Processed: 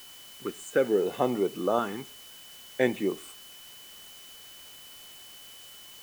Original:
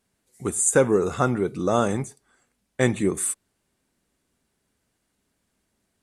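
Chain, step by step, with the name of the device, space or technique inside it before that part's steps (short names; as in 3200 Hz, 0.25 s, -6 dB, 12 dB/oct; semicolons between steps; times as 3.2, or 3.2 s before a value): shortwave radio (BPF 290–2900 Hz; tremolo 0.75 Hz, depth 41%; LFO notch saw up 0.56 Hz 510–2200 Hz; whine 3000 Hz -50 dBFS; white noise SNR 18 dB)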